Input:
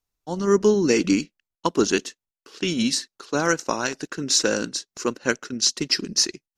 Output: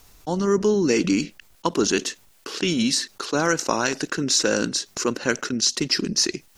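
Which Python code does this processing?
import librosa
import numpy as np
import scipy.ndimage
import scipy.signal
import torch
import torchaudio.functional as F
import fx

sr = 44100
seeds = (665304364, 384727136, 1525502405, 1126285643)

y = fx.env_flatten(x, sr, amount_pct=50)
y = y * 10.0 ** (-3.0 / 20.0)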